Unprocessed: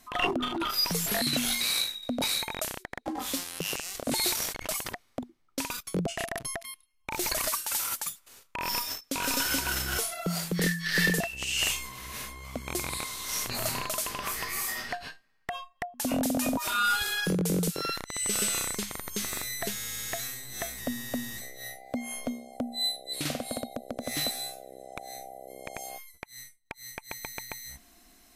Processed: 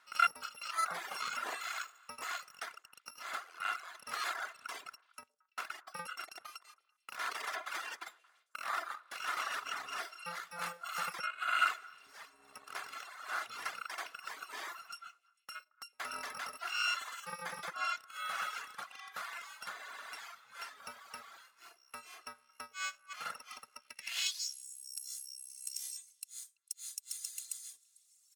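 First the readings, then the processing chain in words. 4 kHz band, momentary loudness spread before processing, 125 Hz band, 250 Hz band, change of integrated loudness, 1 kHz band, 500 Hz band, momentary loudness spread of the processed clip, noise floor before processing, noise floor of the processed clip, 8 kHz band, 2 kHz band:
-11.5 dB, 15 LU, -30.5 dB, -31.0 dB, -9.5 dB, -3.0 dB, -17.5 dB, 16 LU, -65 dBFS, -74 dBFS, -13.5 dB, -6.0 dB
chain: bit-reversed sample order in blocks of 128 samples; high-pass 160 Hz 12 dB/octave; comb 2.9 ms, depth 33%; repeats whose band climbs or falls 112 ms, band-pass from 460 Hz, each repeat 1.4 oct, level -9 dB; band-pass sweep 1.3 kHz -> 7.7 kHz, 23.79–24.66 s; reverb removal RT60 1.8 s; trim +6.5 dB

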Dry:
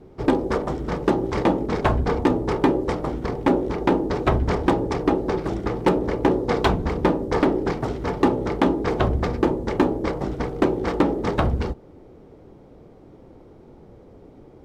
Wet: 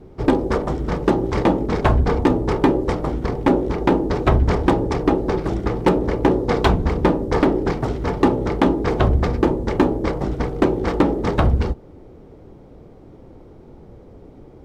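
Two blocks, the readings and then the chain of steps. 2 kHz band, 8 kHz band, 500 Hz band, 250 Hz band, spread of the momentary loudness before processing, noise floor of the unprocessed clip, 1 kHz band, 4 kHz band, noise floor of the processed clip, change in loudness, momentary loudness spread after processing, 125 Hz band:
+2.0 dB, no reading, +2.5 dB, +3.0 dB, 5 LU, -48 dBFS, +2.0 dB, +2.0 dB, -44 dBFS, +3.0 dB, 5 LU, +5.0 dB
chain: bass shelf 110 Hz +6 dB; trim +2 dB

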